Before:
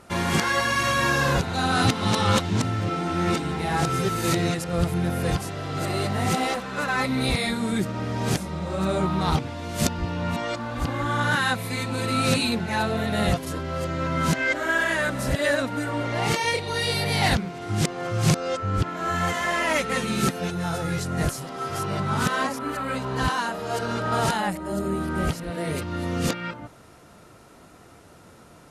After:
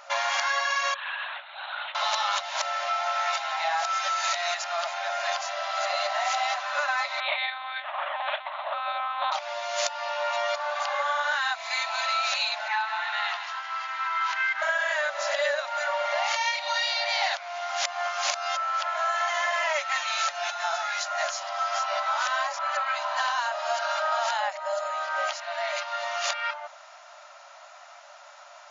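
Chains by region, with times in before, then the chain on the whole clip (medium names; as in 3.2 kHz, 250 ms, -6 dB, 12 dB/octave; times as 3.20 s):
0.94–1.95 s: median filter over 9 samples + differentiator + LPC vocoder at 8 kHz whisper
7.20–9.32 s: band-stop 650 Hz, Q 16 + monotone LPC vocoder at 8 kHz 260 Hz
12.68–14.62 s: elliptic high-pass 860 Hz, stop band 50 dB + distance through air 190 m + bit-crushed delay 157 ms, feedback 55%, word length 8-bit, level -9.5 dB
whole clip: FFT band-pass 550–7200 Hz; compression, threshold -29 dBFS; trim +5.5 dB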